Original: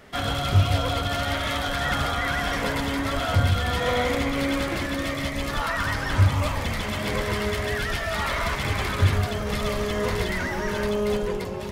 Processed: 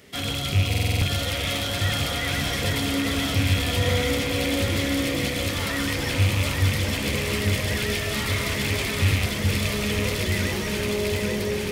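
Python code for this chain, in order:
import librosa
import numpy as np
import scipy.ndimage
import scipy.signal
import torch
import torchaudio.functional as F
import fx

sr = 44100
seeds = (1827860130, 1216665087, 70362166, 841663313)

p1 = fx.rattle_buzz(x, sr, strikes_db=-24.0, level_db=-18.0)
p2 = scipy.signal.sosfilt(scipy.signal.butter(2, 69.0, 'highpass', fs=sr, output='sos'), p1)
p3 = fx.band_shelf(p2, sr, hz=1000.0, db=-9.0, octaves=1.7)
p4 = fx.hum_notches(p3, sr, base_hz=60, count=7)
p5 = np.clip(10.0 ** (26.5 / 20.0) * p4, -1.0, 1.0) / 10.0 ** (26.5 / 20.0)
p6 = p4 + (p5 * librosa.db_to_amplitude(-7.0))
p7 = fx.high_shelf(p6, sr, hz=5400.0, db=6.5)
p8 = p7 + fx.echo_alternate(p7, sr, ms=420, hz=940.0, feedback_pct=82, wet_db=-2.5, dry=0)
p9 = fx.buffer_glitch(p8, sr, at_s=(0.69,), block=2048, repeats=6)
y = p9 * librosa.db_to_amplitude(-2.5)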